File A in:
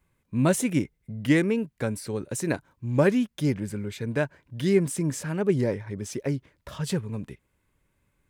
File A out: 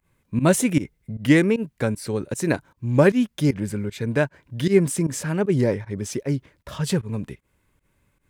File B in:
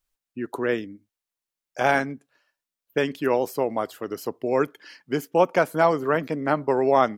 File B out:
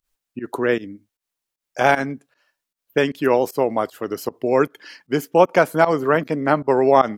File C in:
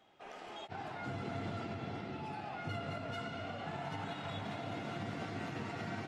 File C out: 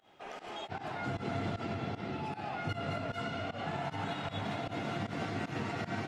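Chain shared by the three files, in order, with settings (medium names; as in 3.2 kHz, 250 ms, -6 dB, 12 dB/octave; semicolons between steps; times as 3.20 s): volume shaper 154 bpm, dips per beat 1, -19 dB, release 103 ms; trim +5 dB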